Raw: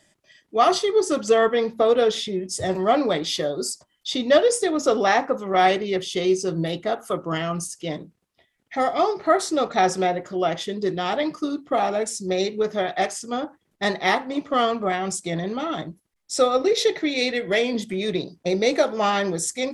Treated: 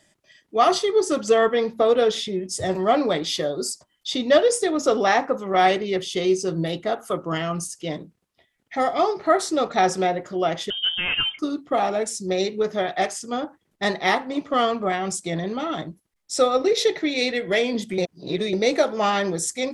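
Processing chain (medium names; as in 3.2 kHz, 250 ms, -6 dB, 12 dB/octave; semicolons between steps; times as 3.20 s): 10.70–11.39 s: frequency inversion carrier 3.4 kHz; 17.98–18.53 s: reverse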